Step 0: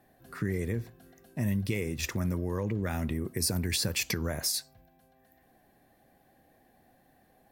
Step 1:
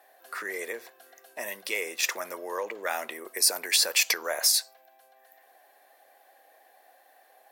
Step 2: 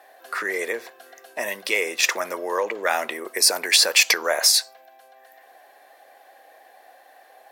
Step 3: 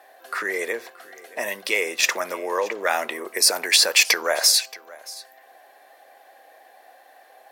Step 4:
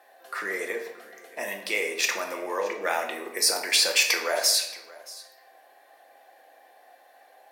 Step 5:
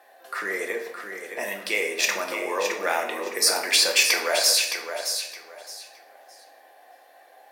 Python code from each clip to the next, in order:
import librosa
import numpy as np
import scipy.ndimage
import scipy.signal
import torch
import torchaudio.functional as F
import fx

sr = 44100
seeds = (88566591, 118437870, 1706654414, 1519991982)

y1 = scipy.signal.sosfilt(scipy.signal.butter(4, 540.0, 'highpass', fs=sr, output='sos'), x)
y1 = y1 * librosa.db_to_amplitude(8.0)
y2 = fx.high_shelf(y1, sr, hz=9700.0, db=-10.0)
y2 = y2 * librosa.db_to_amplitude(8.5)
y3 = y2 + 10.0 ** (-20.5 / 20.0) * np.pad(y2, (int(626 * sr / 1000.0), 0))[:len(y2)]
y4 = fx.room_shoebox(y3, sr, seeds[0], volume_m3=300.0, walls='mixed', distance_m=0.81)
y4 = y4 * librosa.db_to_amplitude(-6.0)
y5 = fx.echo_feedback(y4, sr, ms=616, feedback_pct=23, wet_db=-8)
y5 = y5 * librosa.db_to_amplitude(2.0)